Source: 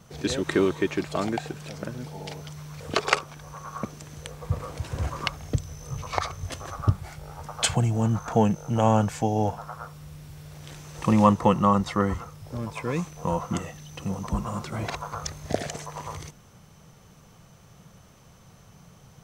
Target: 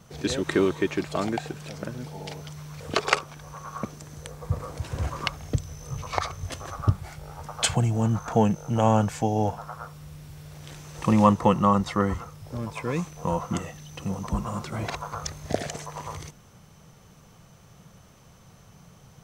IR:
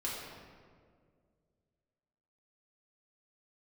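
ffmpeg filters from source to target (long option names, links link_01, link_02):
-filter_complex "[0:a]asettb=1/sr,asplit=3[link_01][link_02][link_03];[link_01]atrim=end=3.954[link_04];[link_02]atrim=start=3.95:end=4.82,asetpts=PTS-STARTPTS,afade=type=in:duration=0.004:curve=qsin,afade=type=out:start_time=0.866:duration=0.004:curve=qsin,equalizer=frequency=2800:width_type=o:width=1:gain=-4.5[link_05];[link_03]atrim=start=4.816[link_06];[link_04][link_05]acrossfade=duration=0.004:curve1=hsin:curve2=qsin[link_07];[link_07][link_06]acrossfade=duration=0.004:curve1=qsin:curve2=hsin"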